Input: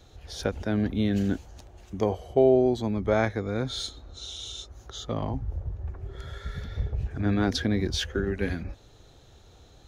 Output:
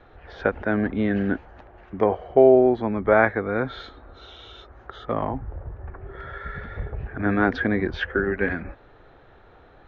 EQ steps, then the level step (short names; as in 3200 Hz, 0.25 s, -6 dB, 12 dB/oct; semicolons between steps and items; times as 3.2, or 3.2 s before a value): synth low-pass 1700 Hz, resonance Q 1.7; air absorption 140 m; bell 76 Hz -11 dB 3 oct; +7.5 dB